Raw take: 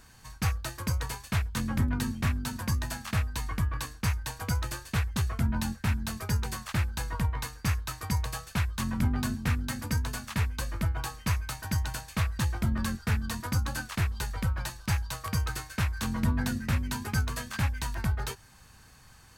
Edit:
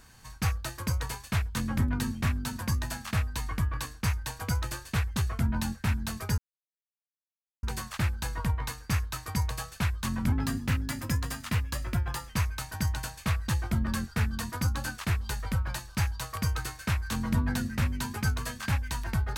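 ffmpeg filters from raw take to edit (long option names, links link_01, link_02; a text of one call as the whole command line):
ffmpeg -i in.wav -filter_complex "[0:a]asplit=4[link_01][link_02][link_03][link_04];[link_01]atrim=end=6.38,asetpts=PTS-STARTPTS,afade=type=out:start_time=6.376:duration=0.004:curve=hsin,apad=pad_dur=1.25[link_05];[link_02]atrim=start=6.38:end=9.074,asetpts=PTS-STARTPTS,afade=type=in:duration=0.004:curve=hsin[link_06];[link_03]atrim=start=9.07:end=11.2,asetpts=PTS-STARTPTS,asetrate=47628,aresample=44100[link_07];[link_04]atrim=start=11.196[link_08];[link_05][link_06]concat=n=2:v=0:a=1[link_09];[link_09][link_07]acrossfade=duration=0.004:curve1=hsin:curve2=hsin[link_10];[link_10][link_08]acrossfade=duration=0.004:curve1=hsin:curve2=hsin" out.wav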